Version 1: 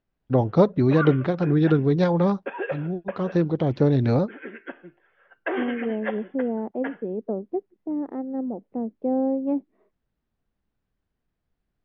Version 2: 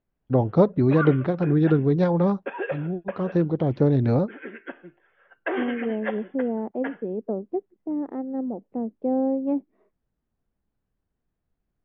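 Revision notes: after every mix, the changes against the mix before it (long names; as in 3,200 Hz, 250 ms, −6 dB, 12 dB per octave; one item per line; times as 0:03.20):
first voice: add high-shelf EQ 2,100 Hz −9 dB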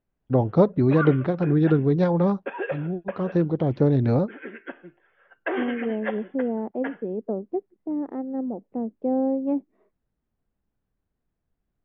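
nothing changed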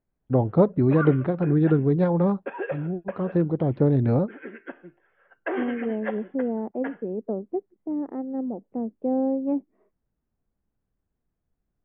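master: add high-frequency loss of the air 330 metres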